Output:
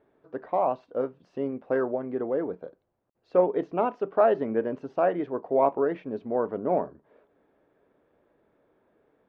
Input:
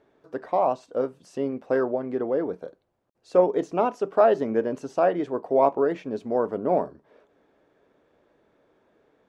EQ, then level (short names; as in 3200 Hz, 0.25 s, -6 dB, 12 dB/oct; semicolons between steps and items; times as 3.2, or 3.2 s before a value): dynamic EQ 2200 Hz, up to +3 dB, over -36 dBFS, Q 0.73; air absorption 320 m; -2.0 dB